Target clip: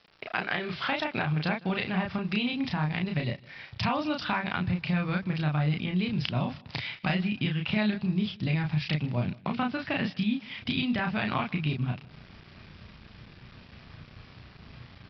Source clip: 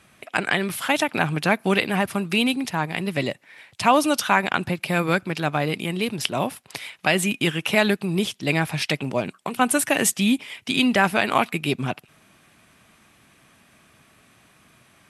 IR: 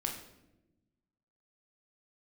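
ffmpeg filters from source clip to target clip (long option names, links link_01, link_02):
-filter_complex "[0:a]asubboost=boost=9.5:cutoff=130,acompressor=threshold=-29dB:ratio=4,aresample=11025,aeval=exprs='val(0)*gte(abs(val(0)),0.00335)':channel_layout=same,aresample=44100,asplit=2[link_01][link_02];[link_02]adelay=33,volume=-3dB[link_03];[link_01][link_03]amix=inputs=2:normalize=0,aecho=1:1:155|310|465:0.0708|0.0269|0.0102"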